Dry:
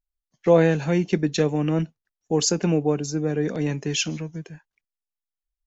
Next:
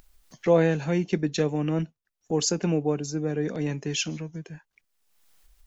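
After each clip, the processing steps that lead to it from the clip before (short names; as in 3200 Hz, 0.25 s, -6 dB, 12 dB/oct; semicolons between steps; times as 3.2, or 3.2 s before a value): upward compressor, threshold -29 dBFS; gain -3.5 dB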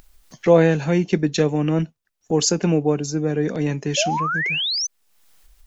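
painted sound rise, 3.97–4.87, 550–6300 Hz -29 dBFS; gain +6 dB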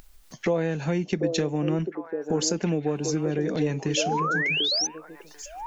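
compressor 4:1, threshold -23 dBFS, peak gain reduction 12.5 dB; on a send: delay with a stepping band-pass 0.742 s, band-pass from 430 Hz, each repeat 1.4 oct, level -3 dB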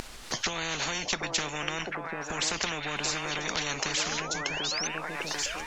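air absorption 66 m; spectral compressor 10:1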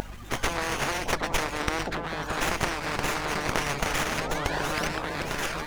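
bin magnitudes rounded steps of 30 dB; hum 50 Hz, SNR 17 dB; running maximum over 9 samples; gain +5.5 dB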